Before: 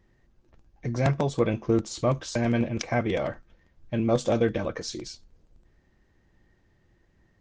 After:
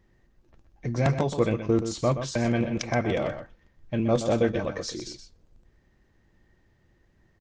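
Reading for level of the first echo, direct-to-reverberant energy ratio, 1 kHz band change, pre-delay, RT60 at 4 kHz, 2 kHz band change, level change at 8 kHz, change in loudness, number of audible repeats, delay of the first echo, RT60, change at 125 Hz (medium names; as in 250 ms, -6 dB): -9.5 dB, no reverb, +0.5 dB, no reverb, no reverb, +0.5 dB, +0.5 dB, +0.5 dB, 1, 125 ms, no reverb, +0.5 dB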